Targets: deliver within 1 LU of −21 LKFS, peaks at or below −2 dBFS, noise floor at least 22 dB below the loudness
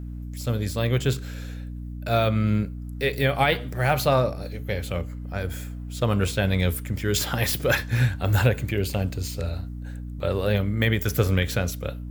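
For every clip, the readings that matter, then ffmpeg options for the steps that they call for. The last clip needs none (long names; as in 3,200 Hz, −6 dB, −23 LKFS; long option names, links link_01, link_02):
mains hum 60 Hz; hum harmonics up to 300 Hz; level of the hum −32 dBFS; integrated loudness −25.0 LKFS; sample peak −7.5 dBFS; target loudness −21.0 LKFS
→ -af "bandreject=frequency=60:width_type=h:width=6,bandreject=frequency=120:width_type=h:width=6,bandreject=frequency=180:width_type=h:width=6,bandreject=frequency=240:width_type=h:width=6,bandreject=frequency=300:width_type=h:width=6"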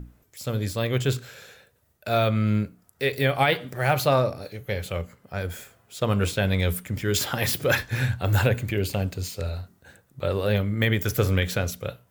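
mains hum none found; integrated loudness −25.5 LKFS; sample peak −7.0 dBFS; target loudness −21.0 LKFS
→ -af "volume=4.5dB"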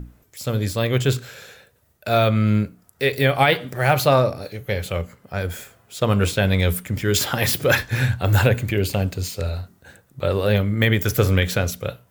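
integrated loudness −21.0 LKFS; sample peak −2.5 dBFS; background noise floor −60 dBFS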